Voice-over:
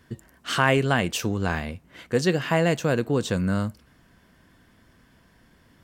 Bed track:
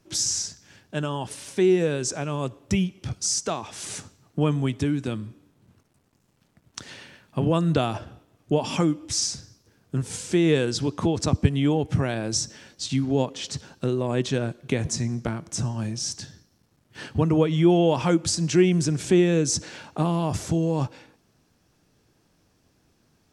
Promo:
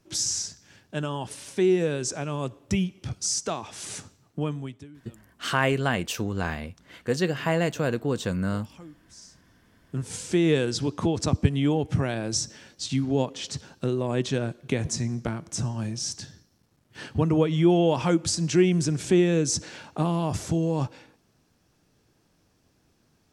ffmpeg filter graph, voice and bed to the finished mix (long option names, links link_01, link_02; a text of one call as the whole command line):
ffmpeg -i stem1.wav -i stem2.wav -filter_complex "[0:a]adelay=4950,volume=-3dB[link_01];[1:a]volume=20dB,afade=type=out:start_time=4.12:duration=0.76:silence=0.0841395,afade=type=in:start_time=9.45:duration=0.74:silence=0.0794328[link_02];[link_01][link_02]amix=inputs=2:normalize=0" out.wav